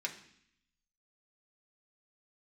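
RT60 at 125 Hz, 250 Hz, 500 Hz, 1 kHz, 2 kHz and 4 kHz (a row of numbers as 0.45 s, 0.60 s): 1.0 s, 0.95 s, 0.65 s, 0.65 s, 0.80 s, 0.80 s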